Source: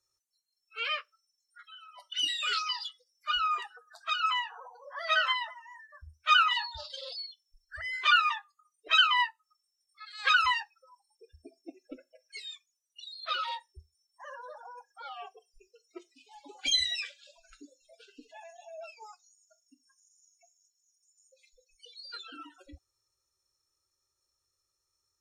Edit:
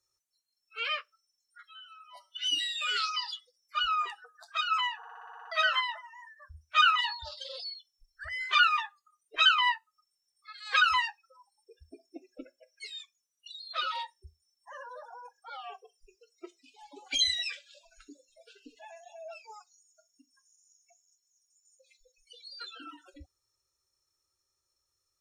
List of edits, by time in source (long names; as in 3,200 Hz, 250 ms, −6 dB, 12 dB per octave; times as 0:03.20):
0:01.65–0:02.60: time-stretch 1.5×
0:04.50: stutter in place 0.06 s, 9 plays